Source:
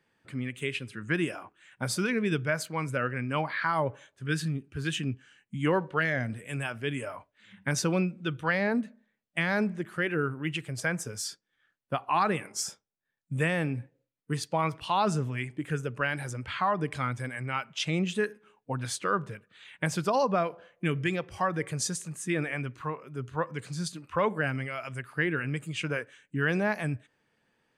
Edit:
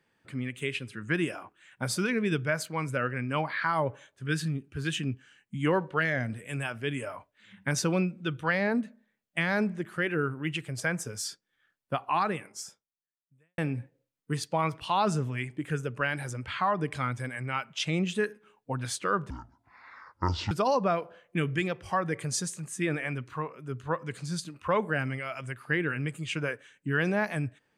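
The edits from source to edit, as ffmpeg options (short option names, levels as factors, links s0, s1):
-filter_complex "[0:a]asplit=4[s0][s1][s2][s3];[s0]atrim=end=13.58,asetpts=PTS-STARTPTS,afade=t=out:st=12.06:d=1.52:c=qua[s4];[s1]atrim=start=13.58:end=19.304,asetpts=PTS-STARTPTS,afade=t=in:d=0.004:c=hsin[s5];[s2]atrim=start=19.3:end=19.99,asetpts=PTS-STARTPTS,asetrate=25137,aresample=44100,atrim=end_sample=53384,asetpts=PTS-STARTPTS[s6];[s3]atrim=start=19.986[s7];[s4][s5]concat=n=2:v=0:a=1[s8];[s8][s6]acrossfade=d=0.004:c1=hsin:c2=hsin[s9];[s9][s7]acrossfade=d=0.004:c1=hsin:c2=hsin"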